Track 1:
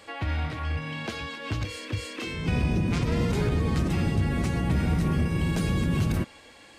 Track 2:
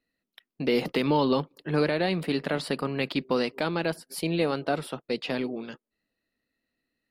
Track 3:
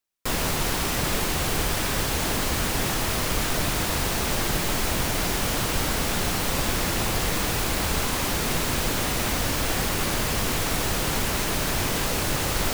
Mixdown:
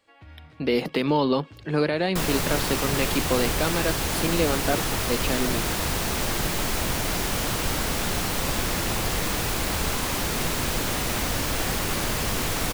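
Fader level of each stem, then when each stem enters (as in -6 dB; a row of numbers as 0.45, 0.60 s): -18.0, +1.5, -1.0 dB; 0.00, 0.00, 1.90 s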